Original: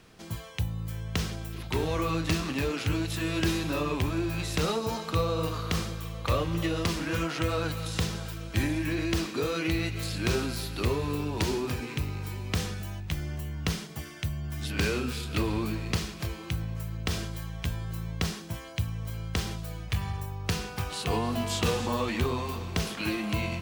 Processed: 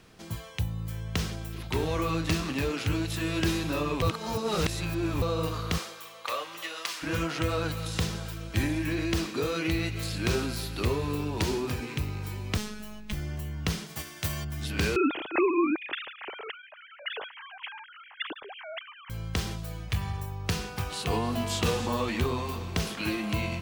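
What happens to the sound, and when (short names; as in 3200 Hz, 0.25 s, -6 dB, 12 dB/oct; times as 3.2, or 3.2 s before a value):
4.02–5.22 reverse
5.77–7.02 HPF 490 Hz -> 1200 Hz
12.57–13.13 robotiser 212 Hz
13.86–14.43 spectral whitening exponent 0.6
14.96–19.1 sine-wave speech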